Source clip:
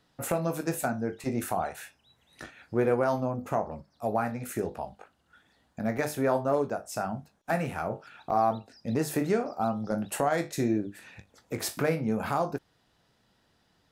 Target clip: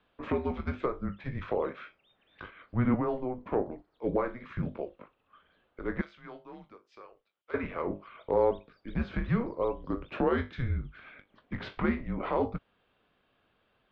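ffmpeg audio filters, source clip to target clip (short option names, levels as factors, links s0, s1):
-filter_complex "[0:a]asettb=1/sr,asplit=3[s0][s1][s2];[s0]atrim=end=6.014[s3];[s1]atrim=start=6.01:end=7.54,asetpts=PTS-STARTPTS,afade=t=in:d=0.004:c=qsin,afade=t=out:st=1.526:d=0.004:c=qsin,aderivative[s4];[s2]atrim=start=7.536[s5];[s3][s4]acrossfade=d=0.004:c1=hsin:c2=qsin[s6];[s6][s5]acrossfade=d=0.004:c1=qsin:c2=hsin,highpass=f=310:t=q:w=0.5412,highpass=f=310:t=q:w=1.307,lowpass=f=3600:t=q:w=0.5176,lowpass=f=3600:t=q:w=0.7071,lowpass=f=3600:t=q:w=1.932,afreqshift=-250,asettb=1/sr,asplit=3[s7][s8][s9];[s7]atrim=end=2.944[s10];[s8]atrim=start=2.94:end=3.52,asetpts=PTS-STARTPTS,afade=t=in:d=0.004:c=qsin,afade=t=out:st=0.576:d=0.004:c=qsin,acrossover=split=570|1700[s11][s12][s13];[s11]acompressor=threshold=0.0355:ratio=4[s14];[s12]acompressor=threshold=0.02:ratio=4[s15];[s13]acompressor=threshold=0.00158:ratio=4[s16];[s14][s15][s16]amix=inputs=3:normalize=0[s17];[s9]atrim=start=3.516[s18];[s10][s17]acrossfade=d=0.004:c1=hsin:c2=qsin[s19];[s19][s18]acrossfade=d=0.004:c1=qsin:c2=hsin"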